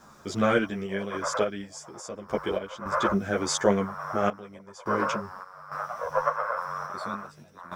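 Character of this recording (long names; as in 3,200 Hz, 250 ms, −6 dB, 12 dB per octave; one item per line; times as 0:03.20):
a quantiser's noise floor 12 bits, dither triangular
sample-and-hold tremolo, depth 90%
a shimmering, thickened sound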